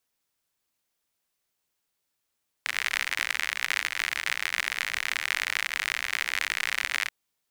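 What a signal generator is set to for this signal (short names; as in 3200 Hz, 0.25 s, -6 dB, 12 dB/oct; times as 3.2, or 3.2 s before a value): rain from filtered ticks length 4.43 s, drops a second 68, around 2000 Hz, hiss -27.5 dB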